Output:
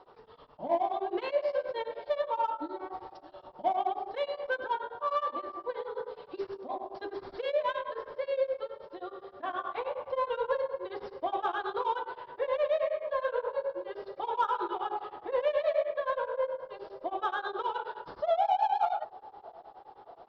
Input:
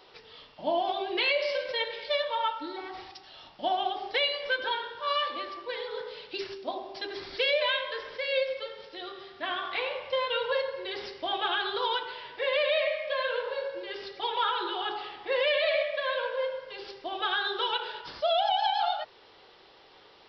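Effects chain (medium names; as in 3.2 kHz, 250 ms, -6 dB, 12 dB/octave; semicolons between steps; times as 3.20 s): low-pass 4.8 kHz; resonant high shelf 1.6 kHz -12.5 dB, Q 1.5; in parallel at -7.5 dB: saturation -29 dBFS, distortion -10 dB; on the sum: feedback echo behind a low-pass 613 ms, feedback 65%, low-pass 830 Hz, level -20 dB; tremolo of two beating tones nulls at 9.5 Hz; trim -1 dB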